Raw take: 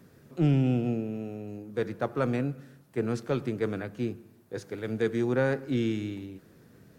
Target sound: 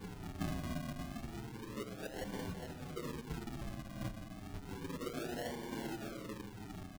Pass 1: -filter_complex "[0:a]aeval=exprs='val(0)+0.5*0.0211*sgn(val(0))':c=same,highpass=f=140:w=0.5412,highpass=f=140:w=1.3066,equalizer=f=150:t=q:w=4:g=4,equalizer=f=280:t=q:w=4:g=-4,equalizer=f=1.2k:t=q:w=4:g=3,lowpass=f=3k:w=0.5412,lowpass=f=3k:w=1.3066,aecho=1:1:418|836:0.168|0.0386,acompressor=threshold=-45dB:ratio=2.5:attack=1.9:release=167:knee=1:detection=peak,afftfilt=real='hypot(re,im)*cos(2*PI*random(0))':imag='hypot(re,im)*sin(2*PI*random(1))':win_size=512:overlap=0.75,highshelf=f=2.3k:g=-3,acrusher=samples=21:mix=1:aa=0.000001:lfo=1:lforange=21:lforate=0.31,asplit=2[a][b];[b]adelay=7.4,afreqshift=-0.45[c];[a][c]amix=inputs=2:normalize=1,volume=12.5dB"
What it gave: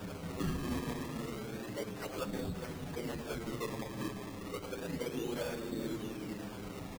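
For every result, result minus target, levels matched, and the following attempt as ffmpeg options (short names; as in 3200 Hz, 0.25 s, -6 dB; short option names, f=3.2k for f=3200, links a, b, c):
decimation with a swept rate: distortion -14 dB; compressor: peak gain reduction -4 dB
-filter_complex "[0:a]aeval=exprs='val(0)+0.5*0.0211*sgn(val(0))':c=same,highpass=f=140:w=0.5412,highpass=f=140:w=1.3066,equalizer=f=150:t=q:w=4:g=4,equalizer=f=280:t=q:w=4:g=-4,equalizer=f=1.2k:t=q:w=4:g=3,lowpass=f=3k:w=0.5412,lowpass=f=3k:w=1.3066,aecho=1:1:418|836:0.168|0.0386,acompressor=threshold=-45dB:ratio=2.5:attack=1.9:release=167:knee=1:detection=peak,afftfilt=real='hypot(re,im)*cos(2*PI*random(0))':imag='hypot(re,im)*sin(2*PI*random(1))':win_size=512:overlap=0.75,highshelf=f=2.3k:g=-3,acrusher=samples=67:mix=1:aa=0.000001:lfo=1:lforange=67:lforate=0.31,asplit=2[a][b];[b]adelay=7.4,afreqshift=-0.45[c];[a][c]amix=inputs=2:normalize=1,volume=12.5dB"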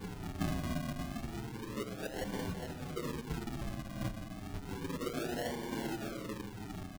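compressor: peak gain reduction -4 dB
-filter_complex "[0:a]aeval=exprs='val(0)+0.5*0.0211*sgn(val(0))':c=same,highpass=f=140:w=0.5412,highpass=f=140:w=1.3066,equalizer=f=150:t=q:w=4:g=4,equalizer=f=280:t=q:w=4:g=-4,equalizer=f=1.2k:t=q:w=4:g=3,lowpass=f=3k:w=0.5412,lowpass=f=3k:w=1.3066,aecho=1:1:418|836:0.168|0.0386,acompressor=threshold=-51.5dB:ratio=2.5:attack=1.9:release=167:knee=1:detection=peak,afftfilt=real='hypot(re,im)*cos(2*PI*random(0))':imag='hypot(re,im)*sin(2*PI*random(1))':win_size=512:overlap=0.75,highshelf=f=2.3k:g=-3,acrusher=samples=67:mix=1:aa=0.000001:lfo=1:lforange=67:lforate=0.31,asplit=2[a][b];[b]adelay=7.4,afreqshift=-0.45[c];[a][c]amix=inputs=2:normalize=1,volume=12.5dB"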